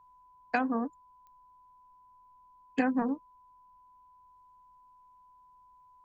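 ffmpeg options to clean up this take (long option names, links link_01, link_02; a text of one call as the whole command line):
ffmpeg -i in.wav -af "adeclick=threshold=4,bandreject=frequency=1000:width=30,agate=range=-21dB:threshold=-52dB" out.wav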